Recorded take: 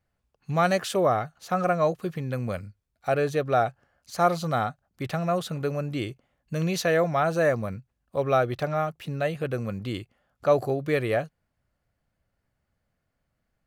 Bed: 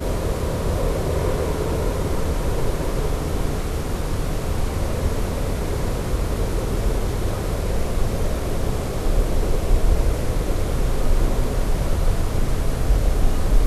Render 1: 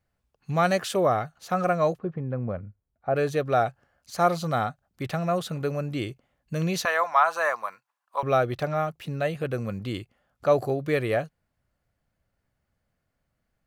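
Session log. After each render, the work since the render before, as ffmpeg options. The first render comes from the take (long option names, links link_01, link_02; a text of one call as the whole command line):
ffmpeg -i in.wav -filter_complex "[0:a]asplit=3[link_01][link_02][link_03];[link_01]afade=type=out:start_time=1.97:duration=0.02[link_04];[link_02]lowpass=1100,afade=type=in:start_time=1.97:duration=0.02,afade=type=out:start_time=3.14:duration=0.02[link_05];[link_03]afade=type=in:start_time=3.14:duration=0.02[link_06];[link_04][link_05][link_06]amix=inputs=3:normalize=0,asettb=1/sr,asplit=3[link_07][link_08][link_09];[link_07]atrim=end=6.854[link_10];[link_08]atrim=start=6.85:end=8.23,asetpts=PTS-STARTPTS,afade=type=in:duration=0.004:curve=qsin,afade=type=out:start_time=1.376:duration=0.004:curve=qsin,highpass=frequency=1000:width_type=q:width=4.1[link_11];[link_09]atrim=start=8.226[link_12];[link_10][link_11]acrossfade=duration=0.004:curve1=hsin:curve2=qsin[link_13];[link_13][link_12]acrossfade=duration=0.004:curve1=qsin:curve2=hsin" out.wav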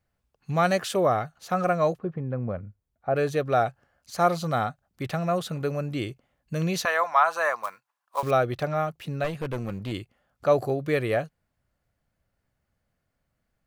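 ffmpeg -i in.wav -filter_complex "[0:a]asettb=1/sr,asplit=3[link_01][link_02][link_03];[link_01]atrim=end=7.634[link_04];[link_02]atrim=start=7.63:end=8.31,asetpts=PTS-STARTPTS,afade=type=in:duration=0.004:curve=qsin,afade=type=out:start_time=0.676:duration=0.004:curve=qsin,acrusher=bits=4:mode=log:mix=0:aa=0.000001[link_05];[link_03]atrim=start=8.306[link_06];[link_04][link_05]acrossfade=duration=0.004:curve1=hsin:curve2=qsin[link_07];[link_07][link_06]acrossfade=duration=0.004:curve1=qsin:curve2=hsin,asettb=1/sr,asplit=3[link_08][link_09][link_10];[link_08]atrim=end=9.244[link_11];[link_09]atrim=start=9.24:end=9.92,asetpts=PTS-STARTPTS,afade=type=in:duration=0.004:curve=qsin,afade=type=out:start_time=0.676:duration=0.004:curve=qsin,aeval=exprs='clip(val(0),-1,0.0266)':channel_layout=same[link_12];[link_10]atrim=start=9.916[link_13];[link_11][link_12]acrossfade=duration=0.004:curve1=hsin:curve2=qsin[link_14];[link_14][link_13]acrossfade=duration=0.004:curve1=qsin:curve2=hsin" out.wav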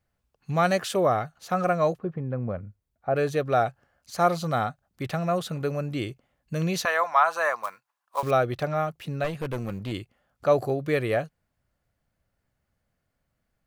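ffmpeg -i in.wav -filter_complex "[0:a]asettb=1/sr,asplit=3[link_01][link_02][link_03];[link_01]atrim=end=9.394[link_04];[link_02]atrim=start=9.39:end=9.82,asetpts=PTS-STARTPTS,afade=type=in:duration=0.004:curve=qsin,afade=type=out:start_time=0.426:duration=0.004:curve=qsin,highshelf=frequency=9100:gain=5.5[link_05];[link_03]atrim=start=9.816[link_06];[link_04][link_05]acrossfade=duration=0.004:curve1=hsin:curve2=qsin[link_07];[link_07][link_06]acrossfade=duration=0.004:curve1=qsin:curve2=hsin" out.wav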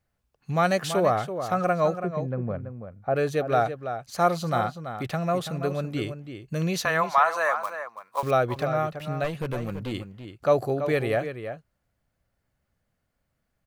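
ffmpeg -i in.wav -filter_complex "[0:a]asplit=2[link_01][link_02];[link_02]adelay=332.4,volume=-9dB,highshelf=frequency=4000:gain=-7.48[link_03];[link_01][link_03]amix=inputs=2:normalize=0" out.wav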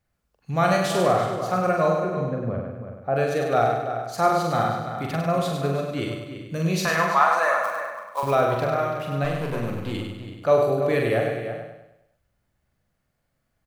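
ffmpeg -i in.wav -filter_complex "[0:a]asplit=2[link_01][link_02];[link_02]adelay=43,volume=-4dB[link_03];[link_01][link_03]amix=inputs=2:normalize=0,aecho=1:1:100|200|300|400|500|600:0.562|0.259|0.119|0.0547|0.0252|0.0116" out.wav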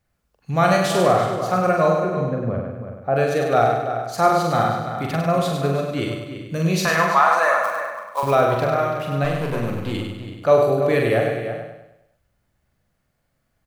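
ffmpeg -i in.wav -af "volume=3.5dB,alimiter=limit=-3dB:level=0:latency=1" out.wav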